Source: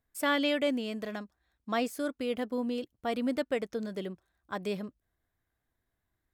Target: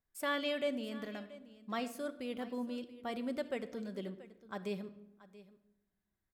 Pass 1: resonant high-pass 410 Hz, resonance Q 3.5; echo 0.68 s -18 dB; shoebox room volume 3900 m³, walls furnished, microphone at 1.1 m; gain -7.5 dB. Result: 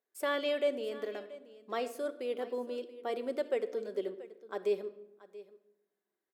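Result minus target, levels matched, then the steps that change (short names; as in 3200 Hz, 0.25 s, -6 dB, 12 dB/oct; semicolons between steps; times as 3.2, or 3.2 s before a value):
500 Hz band +3.0 dB
remove: resonant high-pass 410 Hz, resonance Q 3.5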